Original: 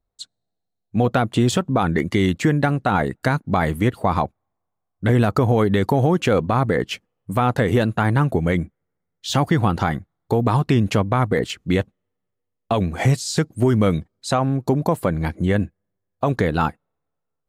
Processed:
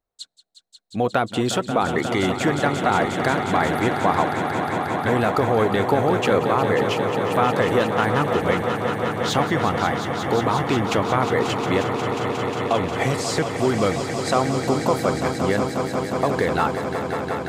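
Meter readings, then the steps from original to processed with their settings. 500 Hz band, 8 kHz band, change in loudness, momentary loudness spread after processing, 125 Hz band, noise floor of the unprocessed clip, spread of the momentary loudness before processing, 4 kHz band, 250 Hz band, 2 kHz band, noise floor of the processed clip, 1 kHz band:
+2.0 dB, +1.0 dB, -1.0 dB, 5 LU, -6.5 dB, -78 dBFS, 8 LU, +2.0 dB, -2.5 dB, +2.5 dB, -44 dBFS, +2.5 dB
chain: tone controls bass -10 dB, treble -2 dB; on a send: swelling echo 0.179 s, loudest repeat 5, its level -10 dB

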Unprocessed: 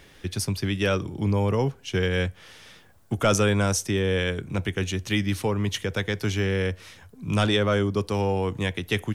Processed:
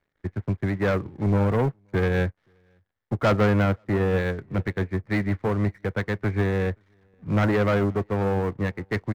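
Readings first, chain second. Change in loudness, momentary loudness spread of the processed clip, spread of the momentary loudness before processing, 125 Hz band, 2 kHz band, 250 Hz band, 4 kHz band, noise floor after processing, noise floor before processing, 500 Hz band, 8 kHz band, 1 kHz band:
+0.5 dB, 9 LU, 7 LU, +1.5 dB, -1.0 dB, +1.5 dB, -12.0 dB, -75 dBFS, -53 dBFS, +0.5 dB, under -15 dB, +1.0 dB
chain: steep low-pass 2200 Hz 96 dB/oct; sample leveller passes 3; on a send: echo 0.527 s -19 dB; on the sum: upward expander 2.5:1, over -28 dBFS; gain -3.5 dB

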